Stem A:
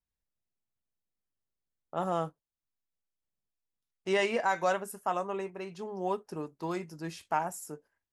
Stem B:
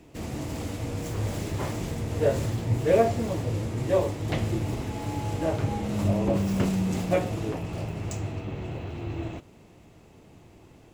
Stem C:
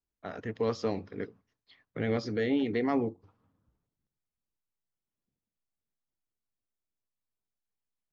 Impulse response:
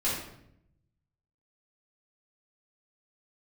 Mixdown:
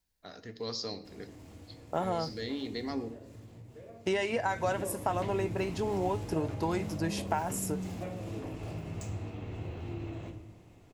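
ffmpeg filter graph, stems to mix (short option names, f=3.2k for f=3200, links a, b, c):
-filter_complex "[0:a]bandreject=f=1.2k:w=6.5,acontrast=74,volume=2dB[a];[1:a]acompressor=threshold=-30dB:ratio=6,adelay=900,volume=-9dB,afade=t=in:st=4.3:d=0.47:silence=0.251189,asplit=2[b][c];[c]volume=-10dB[d];[2:a]aexciter=amount=2.2:drive=8.9:freq=4.2k,equalizer=f=4.3k:w=1.9:g=12.5,volume=-10dB,asplit=2[e][f];[f]volume=-18dB[g];[a][e]amix=inputs=2:normalize=0,acompressor=threshold=-28dB:ratio=6,volume=0dB[h];[3:a]atrim=start_sample=2205[i];[d][g]amix=inputs=2:normalize=0[j];[j][i]afir=irnorm=-1:irlink=0[k];[b][h][k]amix=inputs=3:normalize=0"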